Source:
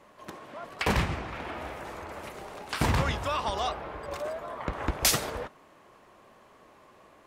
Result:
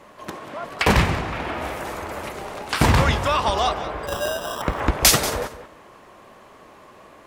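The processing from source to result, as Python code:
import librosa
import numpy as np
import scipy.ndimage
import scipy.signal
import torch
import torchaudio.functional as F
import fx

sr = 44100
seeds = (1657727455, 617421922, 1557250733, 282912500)

p1 = fx.high_shelf(x, sr, hz=fx.line((1.62, 5700.0), (2.21, 11000.0)), db=8.0, at=(1.62, 2.21), fade=0.02)
p2 = fx.sample_hold(p1, sr, seeds[0], rate_hz=2200.0, jitter_pct=0, at=(4.07, 4.62))
p3 = p2 + fx.echo_feedback(p2, sr, ms=186, feedback_pct=17, wet_db=-14.0, dry=0)
y = p3 * librosa.db_to_amplitude(9.0)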